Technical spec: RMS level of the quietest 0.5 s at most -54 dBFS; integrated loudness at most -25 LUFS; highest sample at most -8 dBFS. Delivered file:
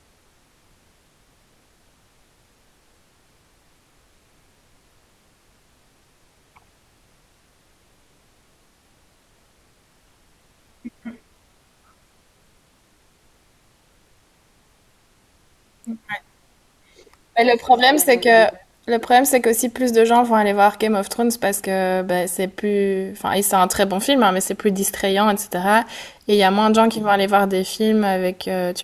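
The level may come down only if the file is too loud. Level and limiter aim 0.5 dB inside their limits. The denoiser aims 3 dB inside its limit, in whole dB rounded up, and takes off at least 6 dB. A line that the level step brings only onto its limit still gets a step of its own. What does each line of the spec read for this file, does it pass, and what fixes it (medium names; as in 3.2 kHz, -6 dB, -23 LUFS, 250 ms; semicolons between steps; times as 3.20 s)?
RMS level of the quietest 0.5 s -58 dBFS: pass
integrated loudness -17.5 LUFS: fail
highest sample -2.5 dBFS: fail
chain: trim -8 dB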